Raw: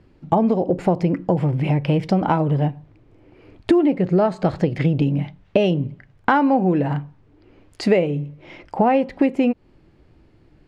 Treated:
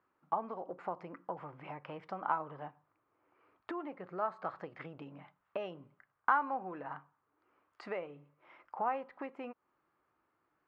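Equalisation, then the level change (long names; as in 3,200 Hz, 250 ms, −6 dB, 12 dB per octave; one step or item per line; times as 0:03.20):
resonant band-pass 1,200 Hz, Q 3.7
−5.0 dB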